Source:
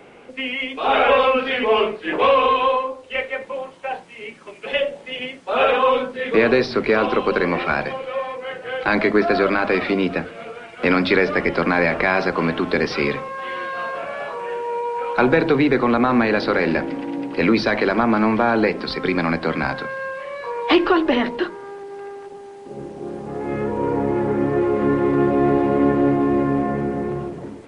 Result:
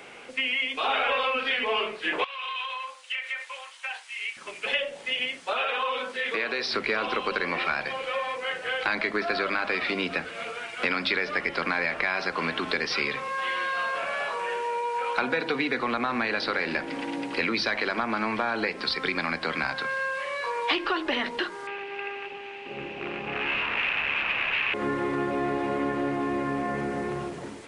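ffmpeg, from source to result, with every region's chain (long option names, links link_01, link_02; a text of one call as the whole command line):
ffmpeg -i in.wav -filter_complex "[0:a]asettb=1/sr,asplit=3[link_01][link_02][link_03];[link_01]atrim=end=2.244[link_04];[link_02]atrim=start=2.24:end=4.37,asetpts=PTS-STARTPTS,afade=type=in:duration=0.004:curve=qsin,afade=type=out:start_time=2.126:duration=0.004:curve=qsin,highpass=1400,acompressor=threshold=-31dB:ratio=16:attack=3.2:release=140:knee=1:detection=peak[link_05];[link_03]atrim=start=4.366[link_06];[link_04][link_05]acrossfade=duration=0.004:curve1=hsin:curve2=qsin[link_07];[link_07][link_06]acrossfade=duration=0.004:curve1=qsin:curve2=hsin,asettb=1/sr,asplit=3[link_08][link_09][link_10];[link_08]atrim=end=5.534[link_11];[link_09]atrim=start=5.53:end=6.74,asetpts=PTS-STARTPTS,afade=type=in:duration=0.004:curve=qsin,afade=type=out:start_time=1.206:duration=0.004:curve=qsin,highpass=frequency=350:poles=1,acompressor=threshold=-28dB:ratio=1.5:attack=3.2:release=140:knee=1:detection=peak[link_12];[link_10]atrim=start=6.736[link_13];[link_11][link_12]acrossfade=duration=0.004:curve1=hsin:curve2=qsin[link_14];[link_14][link_13]acrossfade=duration=0.004:curve1=qsin:curve2=hsin,asettb=1/sr,asplit=3[link_15][link_16][link_17];[link_15]atrim=end=15.234[link_18];[link_16]atrim=start=15.23:end=15.79,asetpts=PTS-STARTPTS,afade=type=in:duration=0.004:curve=qsin,afade=type=out:start_time=0.556:duration=0.004:curve=qsin,highpass=76,aecho=1:1:4.1:0.4,atrim=end_sample=24696[link_19];[link_17]atrim=start=15.786[link_20];[link_18][link_19]acrossfade=duration=0.004:curve1=hsin:curve2=qsin[link_21];[link_21][link_20]acrossfade=duration=0.004:curve1=qsin:curve2=hsin,asettb=1/sr,asplit=3[link_22][link_23][link_24];[link_22]atrim=end=21.674[link_25];[link_23]atrim=start=21.67:end=24.74,asetpts=PTS-STARTPTS,afade=type=in:duration=0.004:curve=qsin,afade=type=out:start_time=3.066:duration=0.004:curve=qsin,aeval=exprs='0.0596*(abs(mod(val(0)/0.0596+3,4)-2)-1)':channel_layout=same,lowpass=frequency=2600:width_type=q:width=7.8[link_26];[link_24]atrim=start=24.736[link_27];[link_25][link_26]acrossfade=duration=0.004:curve1=hsin:curve2=qsin[link_28];[link_28][link_27]acrossfade=duration=0.004:curve1=qsin:curve2=hsin,tiltshelf=frequency=970:gain=-7.5,acompressor=threshold=-26dB:ratio=3" out.wav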